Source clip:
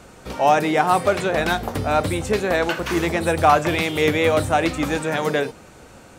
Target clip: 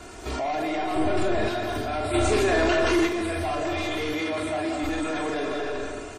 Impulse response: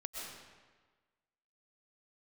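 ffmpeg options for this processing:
-filter_complex "[0:a]volume=15dB,asoftclip=hard,volume=-15dB,acrossover=split=500[link_01][link_02];[link_02]acompressor=threshold=-20dB:ratio=6[link_03];[link_01][link_03]amix=inputs=2:normalize=0,aecho=1:1:2.9:0.88,aecho=1:1:129:0.133,asplit=2[link_04][link_05];[1:a]atrim=start_sample=2205,adelay=46[link_06];[link_05][link_06]afir=irnorm=-1:irlink=0,volume=0.5dB[link_07];[link_04][link_07]amix=inputs=2:normalize=0,asoftclip=type=tanh:threshold=-10.5dB,alimiter=limit=-22dB:level=0:latency=1:release=15,asettb=1/sr,asplit=3[link_08][link_09][link_10];[link_08]atrim=end=0.964[link_11];[link_09]atrim=start=0.96:end=1.48,asetpts=PTS-STARTPTS,afade=type=in:duration=0.004:curve=qsin,afade=type=out:start_time=0.516:duration=0.004:curve=qsin,lowshelf=frequency=390:gain=9[link_12];[link_10]atrim=start=1.476[link_13];[link_11][link_12]acrossfade=duration=0.004:curve1=hsin:curve2=qsin[link_14];[link_14][link_13]acrossfade=duration=0.004:curve1=qsin:curve2=hsin,asplit=3[link_15][link_16][link_17];[link_15]afade=type=out:start_time=2.13:duration=0.02[link_18];[link_16]acontrast=67,afade=type=in:start_time=2.13:duration=0.02,afade=type=out:start_time=3.06:duration=0.02[link_19];[link_17]afade=type=in:start_time=3.06:duration=0.02[link_20];[link_18][link_19][link_20]amix=inputs=3:normalize=0,asettb=1/sr,asplit=3[link_21][link_22][link_23];[link_21]atrim=end=4.134[link_24];[link_22]atrim=start=4.13:end=4.83,asetpts=PTS-STARTPTS,afade=type=in:duration=0.004:curve=qsin,afade=type=out:start_time=0.696:duration=0.004:curve=qsin,highpass=100[link_25];[link_23]atrim=start=4.826[link_26];[link_24][link_25]acrossfade=duration=0.004:curve1=hsin:curve2=qsin[link_27];[link_27][link_26]acrossfade=duration=0.004:curve1=qsin:curve2=hsin" -ar 44100 -c:a wmav2 -b:a 32k

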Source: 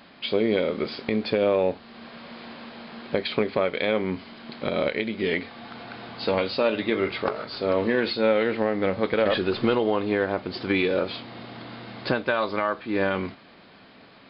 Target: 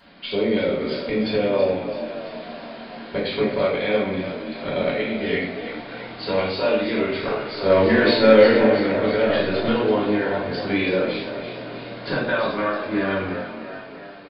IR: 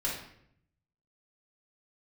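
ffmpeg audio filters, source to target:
-filter_complex "[0:a]asettb=1/sr,asplit=3[link_01][link_02][link_03];[link_01]atrim=end=7.634[link_04];[link_02]atrim=start=7.63:end=8.64,asetpts=PTS-STARTPTS,afade=type=in:duration=0.004:curve=qsin,afade=type=out:start_time=1.006:duration=0.004:curve=qsin,acontrast=62[link_05];[link_03]atrim=start=8.636[link_06];[link_04][link_05]acrossfade=duration=0.004:curve1=hsin:curve2=qsin[link_07];[link_07][link_06]acrossfade=duration=0.004:curve1=qsin:curve2=hsin,asplit=8[link_08][link_09][link_10][link_11][link_12][link_13][link_14][link_15];[link_09]adelay=331,afreqshift=36,volume=-10dB[link_16];[link_10]adelay=662,afreqshift=72,volume=-14.6dB[link_17];[link_11]adelay=993,afreqshift=108,volume=-19.2dB[link_18];[link_12]adelay=1324,afreqshift=144,volume=-23.7dB[link_19];[link_13]adelay=1655,afreqshift=180,volume=-28.3dB[link_20];[link_14]adelay=1986,afreqshift=216,volume=-32.9dB[link_21];[link_15]adelay=2317,afreqshift=252,volume=-37.5dB[link_22];[link_08][link_16][link_17][link_18][link_19][link_20][link_21][link_22]amix=inputs=8:normalize=0[link_23];[1:a]atrim=start_sample=2205[link_24];[link_23][link_24]afir=irnorm=-1:irlink=0,volume=-4dB"

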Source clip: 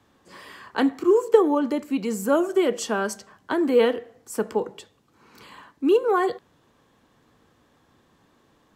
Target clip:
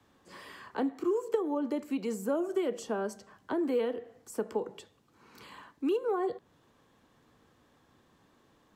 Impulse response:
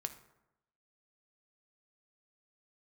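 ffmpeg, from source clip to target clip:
-filter_complex "[0:a]acrossover=split=250|850[link_01][link_02][link_03];[link_01]acompressor=threshold=-40dB:ratio=4[link_04];[link_02]acompressor=threshold=-25dB:ratio=4[link_05];[link_03]acompressor=threshold=-42dB:ratio=4[link_06];[link_04][link_05][link_06]amix=inputs=3:normalize=0,volume=-4dB"

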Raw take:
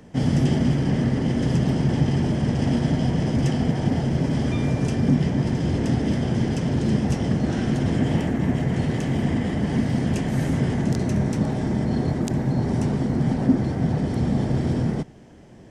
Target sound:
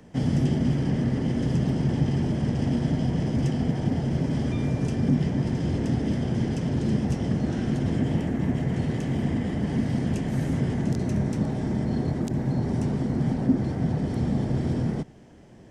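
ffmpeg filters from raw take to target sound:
ffmpeg -i in.wav -filter_complex "[0:a]acrossover=split=500[link_01][link_02];[link_02]acompressor=threshold=-35dB:ratio=6[link_03];[link_01][link_03]amix=inputs=2:normalize=0,volume=-3dB" out.wav

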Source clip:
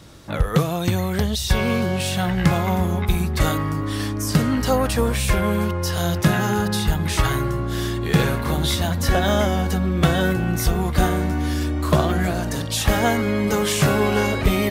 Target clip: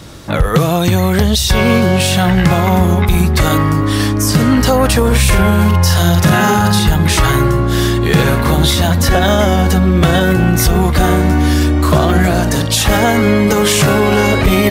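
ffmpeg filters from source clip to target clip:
ffmpeg -i in.wav -filter_complex "[0:a]asettb=1/sr,asplit=3[link_01][link_02][link_03];[link_01]atrim=end=5.074[link_04];[link_02]atrim=start=5.07:end=6.79,asetpts=PTS-STARTPTS,afade=type=in:duration=0.004:curve=qsin,afade=type=out:start_time=1.716:duration=0.004:curve=qsin,asplit=2[link_05][link_06];[link_06]adelay=47,volume=-3dB[link_07];[link_05][link_07]amix=inputs=2:normalize=0,atrim=end_sample=75852[link_08];[link_03]atrim=start=6.786[link_09];[link_04][link_08]acrossfade=duration=0.004:curve1=hsin:curve2=qsin[link_10];[link_10][link_09]acrossfade=duration=0.004:curve1=qsin:curve2=hsin,alimiter=level_in=12dB:limit=-1dB:release=50:level=0:latency=1,volume=-1dB" out.wav

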